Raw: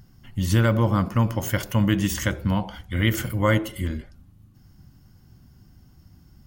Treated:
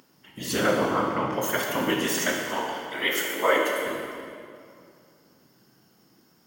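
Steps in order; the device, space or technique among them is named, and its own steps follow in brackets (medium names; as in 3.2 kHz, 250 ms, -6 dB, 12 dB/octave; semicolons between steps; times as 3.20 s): 0.60–1.33 s: distance through air 170 m; 2.40–3.86 s: steep high-pass 280 Hz; whispering ghost (whisper effect; high-pass 400 Hz 12 dB/octave; reverberation RT60 2.4 s, pre-delay 8 ms, DRR -1 dB)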